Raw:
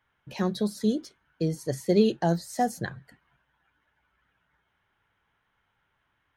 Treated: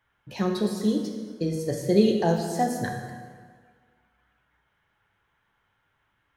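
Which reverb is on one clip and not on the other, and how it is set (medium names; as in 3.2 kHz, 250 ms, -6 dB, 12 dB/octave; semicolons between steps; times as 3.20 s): plate-style reverb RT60 1.7 s, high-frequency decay 0.75×, DRR 2 dB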